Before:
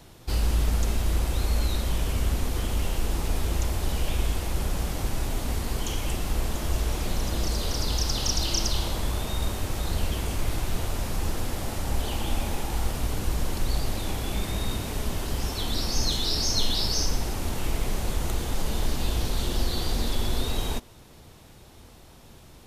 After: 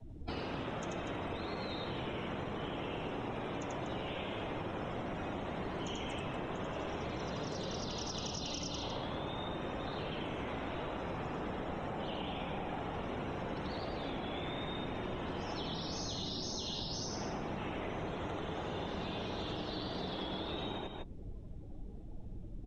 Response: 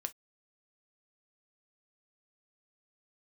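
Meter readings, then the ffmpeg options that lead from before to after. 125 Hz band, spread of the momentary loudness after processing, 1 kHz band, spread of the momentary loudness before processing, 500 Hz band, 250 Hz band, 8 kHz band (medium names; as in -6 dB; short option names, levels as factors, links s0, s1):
-14.0 dB, 2 LU, -4.0 dB, 6 LU, -3.5 dB, -5.5 dB, -17.5 dB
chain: -filter_complex "[0:a]acrossover=split=300|7100[s0][s1][s2];[s0]acompressor=threshold=0.0316:ratio=4[s3];[s1]acompressor=threshold=0.02:ratio=4[s4];[s2]acompressor=threshold=0.00562:ratio=4[s5];[s3][s4][s5]amix=inputs=3:normalize=0,equalizer=f=4600:w=5.7:g=-5,afftfilt=real='re*lt(hypot(re,im),0.112)':imag='im*lt(hypot(re,im),0.112)':win_size=1024:overlap=0.75,aemphasis=mode=reproduction:type=cd,afftdn=nr=26:nf=-45,aecho=1:1:87.46|242:0.891|0.355,aresample=22050,aresample=44100,afreqshift=-48,acompressor=threshold=0.01:ratio=6,volume=1.5"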